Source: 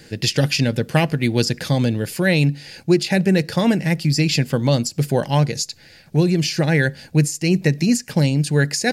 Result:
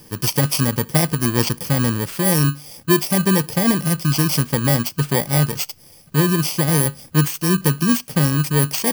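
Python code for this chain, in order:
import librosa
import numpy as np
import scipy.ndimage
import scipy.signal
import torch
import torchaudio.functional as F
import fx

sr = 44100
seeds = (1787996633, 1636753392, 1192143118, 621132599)

y = fx.bit_reversed(x, sr, seeds[0], block=32)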